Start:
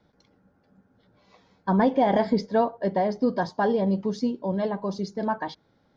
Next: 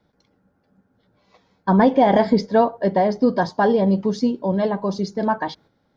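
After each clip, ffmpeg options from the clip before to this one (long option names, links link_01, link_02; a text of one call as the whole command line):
ffmpeg -i in.wav -af "agate=range=-7dB:threshold=-54dB:ratio=16:detection=peak,volume=6dB" out.wav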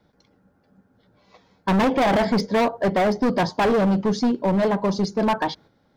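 ffmpeg -i in.wav -af "asoftclip=type=hard:threshold=-19.5dB,volume=3dB" out.wav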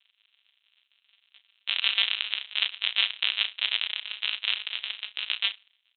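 ffmpeg -i in.wav -filter_complex "[0:a]aresample=8000,acrusher=samples=38:mix=1:aa=0.000001,aresample=44100,highpass=frequency=3000:width_type=q:width=3.4,asplit=2[link_01][link_02];[link_02]adelay=34,volume=-11dB[link_03];[link_01][link_03]amix=inputs=2:normalize=0,volume=6.5dB" out.wav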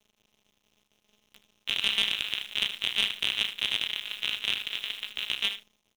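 ffmpeg -i in.wav -af "aeval=exprs='(tanh(3.55*val(0)+0.2)-tanh(0.2))/3.55':channel_layout=same,acrusher=bits=8:dc=4:mix=0:aa=0.000001,aecho=1:1:77:0.266" out.wav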